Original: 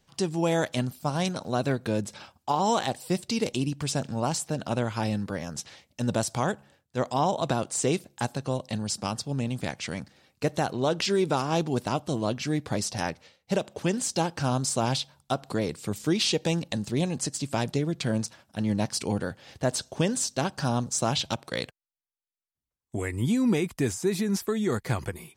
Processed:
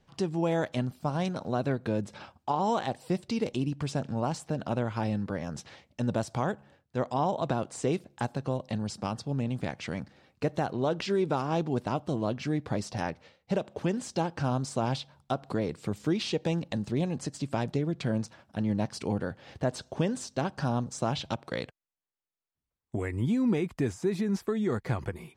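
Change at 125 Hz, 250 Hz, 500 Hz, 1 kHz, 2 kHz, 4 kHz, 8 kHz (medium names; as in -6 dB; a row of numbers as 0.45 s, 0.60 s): -2.0 dB, -2.0 dB, -2.5 dB, -3.0 dB, -4.5 dB, -8.5 dB, -12.5 dB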